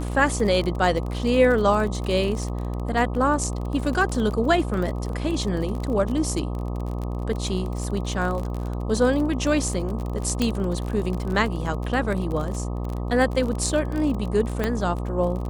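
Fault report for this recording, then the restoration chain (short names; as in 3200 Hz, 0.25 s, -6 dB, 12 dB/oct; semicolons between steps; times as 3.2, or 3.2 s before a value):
buzz 60 Hz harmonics 21 -28 dBFS
crackle 37/s -28 dBFS
10.42 pop -10 dBFS
14.64 pop -10 dBFS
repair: de-click; de-hum 60 Hz, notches 21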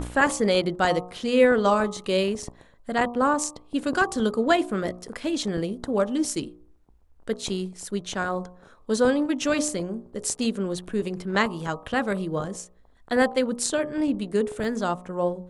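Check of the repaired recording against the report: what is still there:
10.42 pop
14.64 pop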